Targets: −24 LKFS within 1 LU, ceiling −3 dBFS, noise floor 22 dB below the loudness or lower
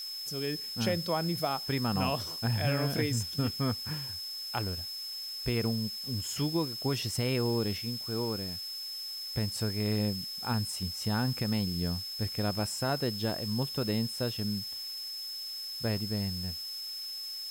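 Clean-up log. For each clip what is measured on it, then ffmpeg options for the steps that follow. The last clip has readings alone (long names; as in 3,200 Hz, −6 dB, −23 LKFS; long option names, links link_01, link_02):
interfering tone 5,200 Hz; level of the tone −37 dBFS; background noise floor −40 dBFS; target noise floor −54 dBFS; integrated loudness −32.0 LKFS; sample peak −17.5 dBFS; target loudness −24.0 LKFS
→ -af "bandreject=frequency=5200:width=30"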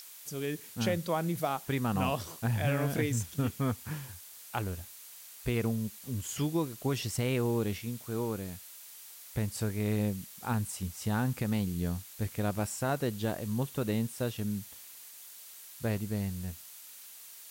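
interfering tone none found; background noise floor −50 dBFS; target noise floor −56 dBFS
→ -af "afftdn=noise_reduction=6:noise_floor=-50"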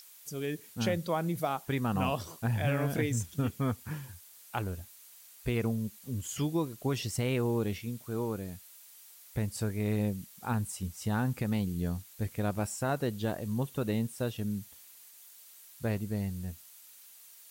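background noise floor −55 dBFS; target noise floor −56 dBFS
→ -af "afftdn=noise_reduction=6:noise_floor=-55"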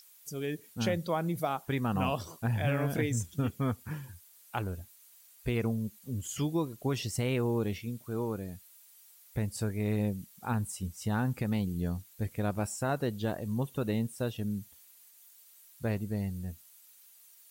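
background noise floor −58 dBFS; integrated loudness −33.5 LKFS; sample peak −18.5 dBFS; target loudness −24.0 LKFS
→ -af "volume=9.5dB"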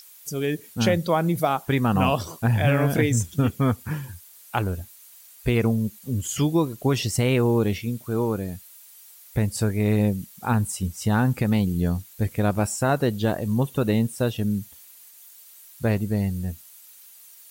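integrated loudness −24.0 LKFS; sample peak −9.0 dBFS; background noise floor −49 dBFS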